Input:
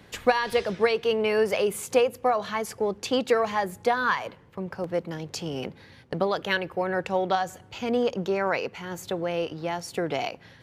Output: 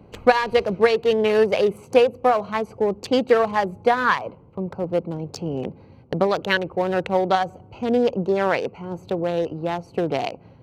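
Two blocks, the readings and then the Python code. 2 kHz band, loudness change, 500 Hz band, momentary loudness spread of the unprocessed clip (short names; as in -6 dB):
+3.5 dB, +5.0 dB, +5.5 dB, 11 LU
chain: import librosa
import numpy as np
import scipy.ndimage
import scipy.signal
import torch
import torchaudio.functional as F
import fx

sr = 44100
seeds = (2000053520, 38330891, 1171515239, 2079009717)

y = fx.wiener(x, sr, points=25)
y = y * 10.0 ** (6.0 / 20.0)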